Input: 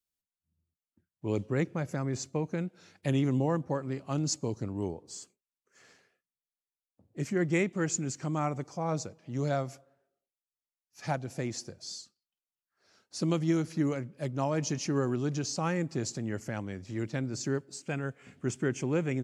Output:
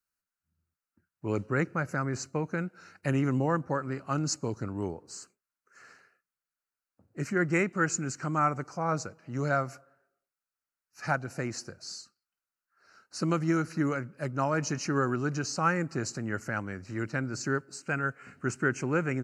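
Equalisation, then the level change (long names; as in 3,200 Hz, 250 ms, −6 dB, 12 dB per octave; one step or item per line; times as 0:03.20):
Butterworth band-reject 3,400 Hz, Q 3.9
parametric band 1,400 Hz +13.5 dB 0.62 octaves
0.0 dB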